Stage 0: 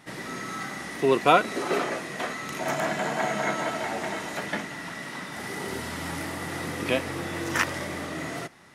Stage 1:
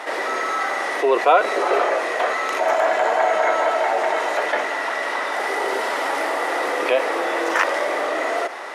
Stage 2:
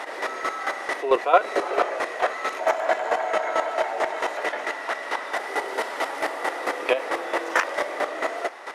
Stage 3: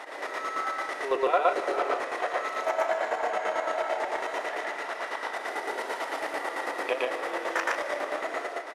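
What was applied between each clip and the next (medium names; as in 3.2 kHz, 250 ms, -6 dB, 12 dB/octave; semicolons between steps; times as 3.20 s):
inverse Chebyshev high-pass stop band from 150 Hz, stop band 60 dB; tilt EQ -4 dB/octave; level flattener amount 50%; trim +3 dB
square tremolo 4.5 Hz, depth 65%, duty 20%
loudspeakers at several distances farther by 40 m 0 dB, 51 m -9 dB; algorithmic reverb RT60 3.8 s, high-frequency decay 0.8×, pre-delay 85 ms, DRR 12 dB; trim -8 dB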